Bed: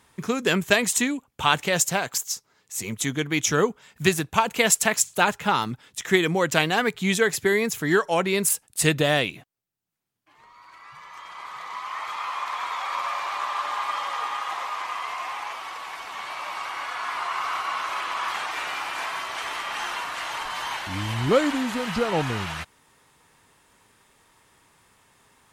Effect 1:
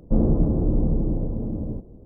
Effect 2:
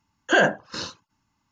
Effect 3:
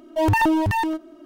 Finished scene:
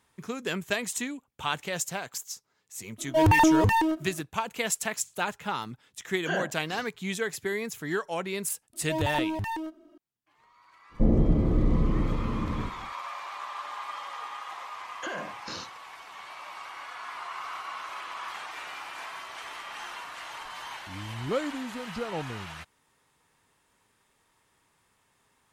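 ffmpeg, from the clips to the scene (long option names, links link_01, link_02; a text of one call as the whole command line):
ffmpeg -i bed.wav -i cue0.wav -i cue1.wav -i cue2.wav -filter_complex "[3:a]asplit=2[link_01][link_02];[2:a]asplit=2[link_03][link_04];[0:a]volume=-9.5dB[link_05];[link_04]acompressor=threshold=-31dB:ratio=6:attack=3.2:release=140:knee=1:detection=peak[link_06];[link_01]atrim=end=1.25,asetpts=PTS-STARTPTS,volume=-1dB,afade=type=in:duration=0.004:curve=hsin,afade=type=out:start_time=1.246:duration=0.004:curve=hsin,adelay=2980[link_07];[link_03]atrim=end=1.51,asetpts=PTS-STARTPTS,volume=-12.5dB,afade=type=in:duration=0.004:curve=hsin,afade=type=out:start_time=1.506:duration=0.004:curve=hsin,adelay=5960[link_08];[link_02]atrim=end=1.25,asetpts=PTS-STARTPTS,volume=-10.5dB,afade=type=in:duration=0.004:curve=hsin,afade=type=out:start_time=1.246:duration=0.004:curve=hsin,adelay=8730[link_09];[1:a]atrim=end=2.05,asetpts=PTS-STARTPTS,volume=-2.5dB,afade=type=in:duration=0.1,afade=type=out:start_time=1.95:duration=0.1,adelay=10890[link_10];[link_06]atrim=end=1.51,asetpts=PTS-STARTPTS,volume=-2.5dB,afade=type=in:duration=0.004:curve=hsin,afade=type=out:start_time=1.506:duration=0.004:curve=hsin,adelay=14740[link_11];[link_05][link_07][link_08][link_09][link_10][link_11]amix=inputs=6:normalize=0" out.wav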